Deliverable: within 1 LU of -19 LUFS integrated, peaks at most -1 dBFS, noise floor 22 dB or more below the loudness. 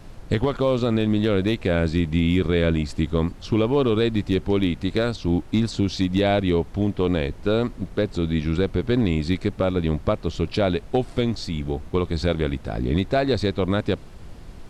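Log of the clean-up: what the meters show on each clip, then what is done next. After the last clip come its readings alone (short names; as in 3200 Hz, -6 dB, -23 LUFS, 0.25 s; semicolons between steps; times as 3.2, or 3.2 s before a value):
clipped 0.4%; flat tops at -11.0 dBFS; noise floor -41 dBFS; noise floor target -45 dBFS; loudness -23.0 LUFS; peak -11.0 dBFS; loudness target -19.0 LUFS
-> clip repair -11 dBFS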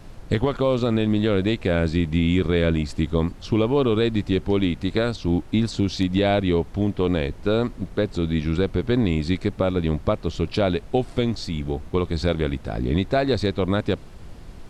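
clipped 0.0%; noise floor -41 dBFS; noise floor target -45 dBFS
-> noise print and reduce 6 dB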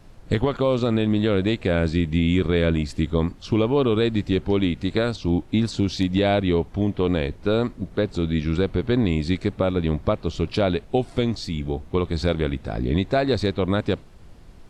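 noise floor -45 dBFS; loudness -23.0 LUFS; peak -7.5 dBFS; loudness target -19.0 LUFS
-> gain +4 dB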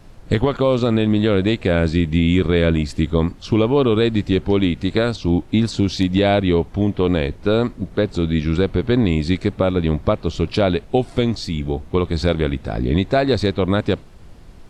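loudness -19.0 LUFS; peak -3.5 dBFS; noise floor -41 dBFS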